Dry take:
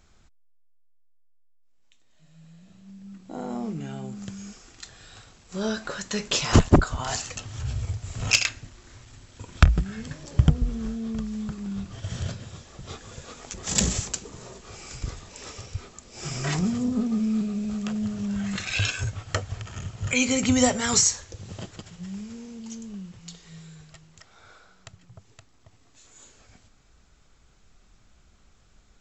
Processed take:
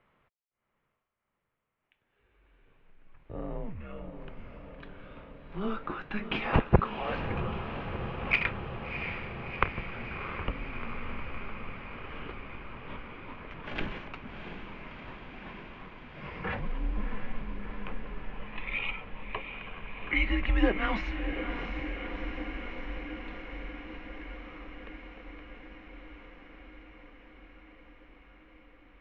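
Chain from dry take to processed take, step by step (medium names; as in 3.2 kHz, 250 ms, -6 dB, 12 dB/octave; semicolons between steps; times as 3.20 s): 18.22–19.53 s: static phaser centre 1.7 kHz, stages 6; echo that smears into a reverb 694 ms, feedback 77%, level -8 dB; mistuned SSB -210 Hz 230–2900 Hz; trim -2 dB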